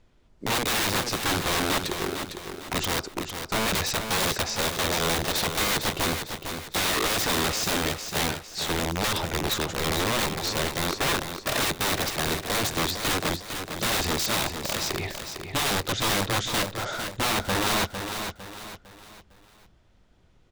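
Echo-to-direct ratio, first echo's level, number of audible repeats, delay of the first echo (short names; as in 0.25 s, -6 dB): -7.0 dB, -7.5 dB, 4, 0.454 s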